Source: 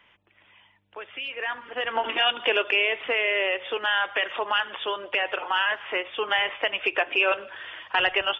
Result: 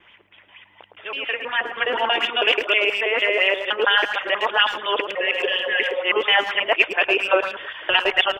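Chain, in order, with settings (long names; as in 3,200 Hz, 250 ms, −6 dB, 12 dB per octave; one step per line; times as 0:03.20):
reversed piece by piece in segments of 161 ms
healed spectral selection 0:05.18–0:06.01, 470–1,600 Hz after
in parallel at +3 dB: speech leveller within 3 dB 0.5 s
on the sum: far-end echo of a speakerphone 110 ms, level −8 dB
auto-filter bell 4.2 Hz 300–3,500 Hz +10 dB
level −5.5 dB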